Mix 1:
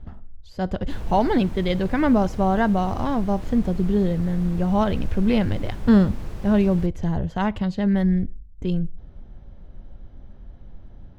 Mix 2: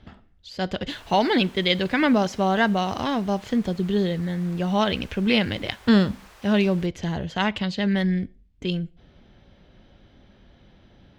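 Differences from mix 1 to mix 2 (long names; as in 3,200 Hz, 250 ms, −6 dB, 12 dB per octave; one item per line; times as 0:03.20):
speech: add meter weighting curve D
background: add high-pass filter 1,000 Hz 12 dB per octave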